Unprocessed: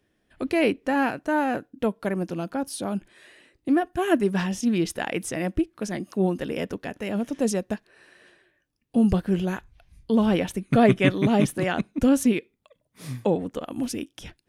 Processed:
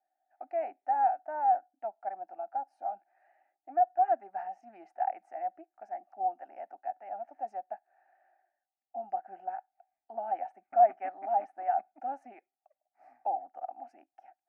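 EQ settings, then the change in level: ladder band-pass 810 Hz, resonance 80%; peaking EQ 750 Hz +8 dB 0.54 oct; static phaser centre 700 Hz, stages 8; -3.5 dB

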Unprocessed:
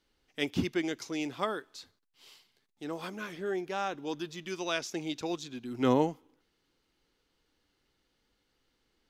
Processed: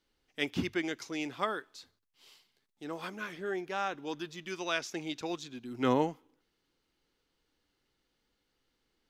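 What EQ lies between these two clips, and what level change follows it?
hum notches 50/100 Hz; dynamic bell 1.7 kHz, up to +5 dB, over -47 dBFS, Q 0.72; -3.0 dB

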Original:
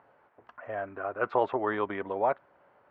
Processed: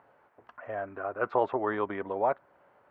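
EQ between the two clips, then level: dynamic bell 3.1 kHz, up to -4 dB, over -47 dBFS, Q 0.9; 0.0 dB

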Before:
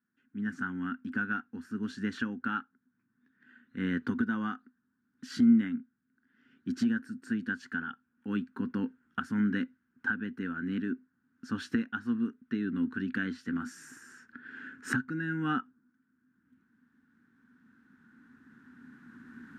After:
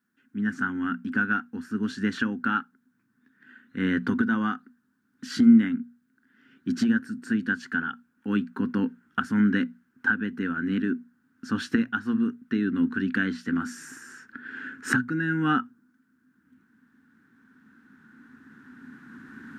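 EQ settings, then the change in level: bass shelf 76 Hz -5 dB; hum notches 60/120/180/240 Hz; +7.5 dB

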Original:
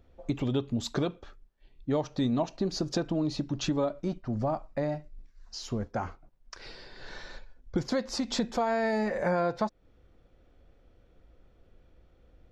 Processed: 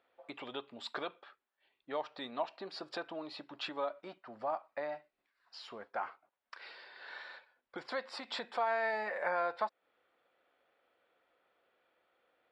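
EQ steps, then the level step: boxcar filter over 7 samples; high-pass 890 Hz 12 dB/octave; +1.0 dB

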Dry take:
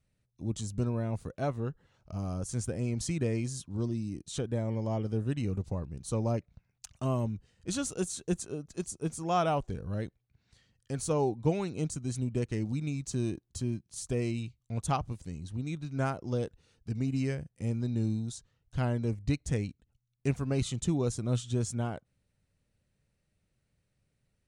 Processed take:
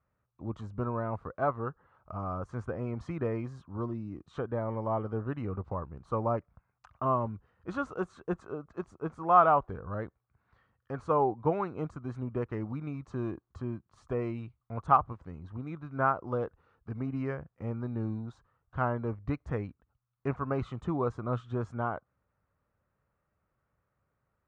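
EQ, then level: high-pass 57 Hz; resonant low-pass 1.2 kHz, resonance Q 3.5; peaking EQ 160 Hz -8 dB 2.5 oct; +3.0 dB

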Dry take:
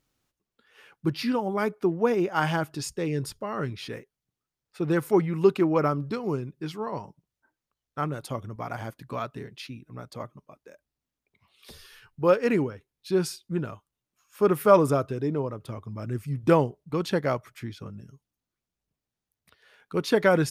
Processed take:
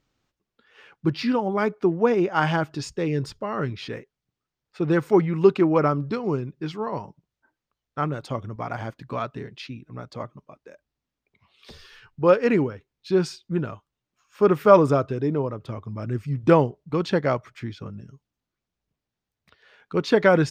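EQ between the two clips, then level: boxcar filter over 4 samples; +3.5 dB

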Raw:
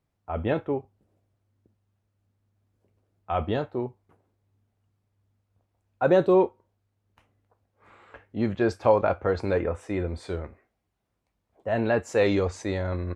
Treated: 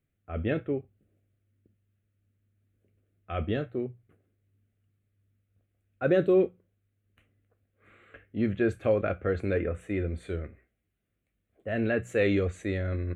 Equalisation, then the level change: hum notches 60/120/180 Hz; static phaser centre 2.2 kHz, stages 4; 0.0 dB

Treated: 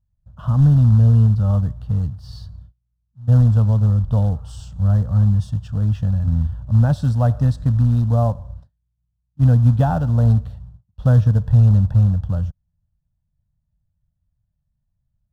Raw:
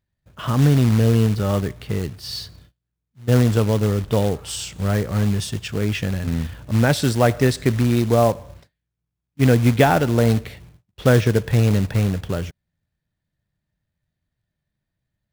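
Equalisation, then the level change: RIAA curve playback; static phaser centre 910 Hz, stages 4; -5.5 dB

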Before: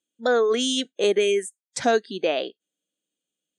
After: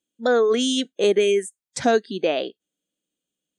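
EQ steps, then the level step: bass shelf 270 Hz +7.5 dB; 0.0 dB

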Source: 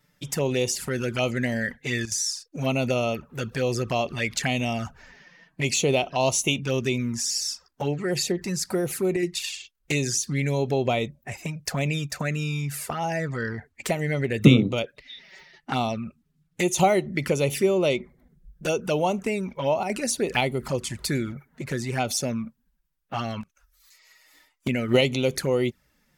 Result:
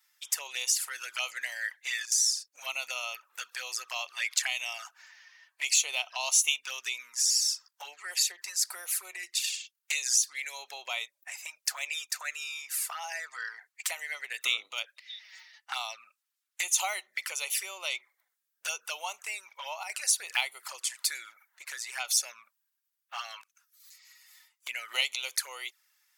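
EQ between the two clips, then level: high-pass 960 Hz 24 dB/octave; treble shelf 3.6 kHz +9.5 dB; -5.5 dB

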